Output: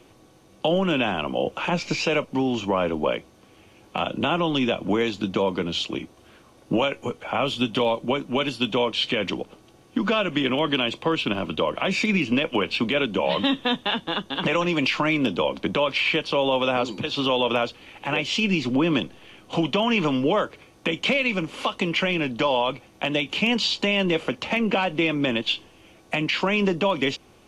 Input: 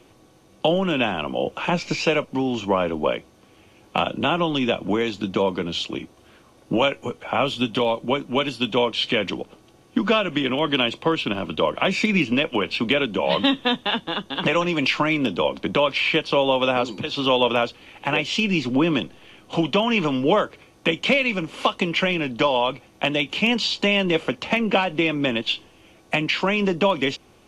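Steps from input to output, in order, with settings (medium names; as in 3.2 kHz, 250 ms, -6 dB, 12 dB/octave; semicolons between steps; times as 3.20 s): peak limiter -12.5 dBFS, peak gain reduction 6.5 dB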